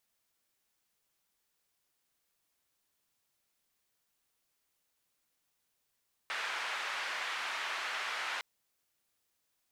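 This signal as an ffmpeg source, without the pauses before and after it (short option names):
-f lavfi -i "anoisesrc=c=white:d=2.11:r=44100:seed=1,highpass=f=1100,lowpass=f=2000,volume=-19.6dB"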